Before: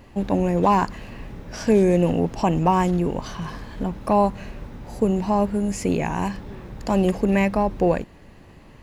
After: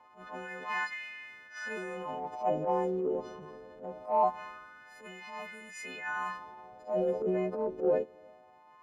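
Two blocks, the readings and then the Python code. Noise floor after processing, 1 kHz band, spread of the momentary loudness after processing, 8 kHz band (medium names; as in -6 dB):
-58 dBFS, -10.5 dB, 17 LU, -16.0 dB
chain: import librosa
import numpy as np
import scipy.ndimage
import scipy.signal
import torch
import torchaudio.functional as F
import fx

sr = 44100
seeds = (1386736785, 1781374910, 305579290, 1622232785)

y = fx.freq_snap(x, sr, grid_st=3)
y = fx.wah_lfo(y, sr, hz=0.23, low_hz=410.0, high_hz=2100.0, q=4.9)
y = fx.transient(y, sr, attack_db=-11, sustain_db=5)
y = F.gain(torch.from_numpy(y), 1.0).numpy()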